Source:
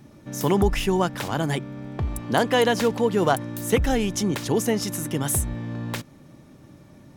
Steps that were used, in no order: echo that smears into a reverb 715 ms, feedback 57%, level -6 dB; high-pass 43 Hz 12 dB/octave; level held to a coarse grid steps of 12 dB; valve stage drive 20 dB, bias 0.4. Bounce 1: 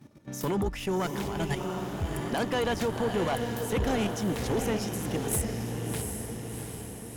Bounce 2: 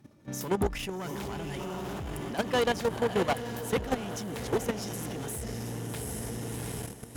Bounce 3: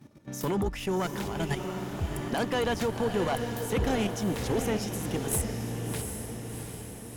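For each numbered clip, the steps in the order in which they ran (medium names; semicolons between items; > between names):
high-pass > level held to a coarse grid > echo that smears into a reverb > valve stage; echo that smears into a reverb > valve stage > high-pass > level held to a coarse grid; high-pass > level held to a coarse grid > valve stage > echo that smears into a reverb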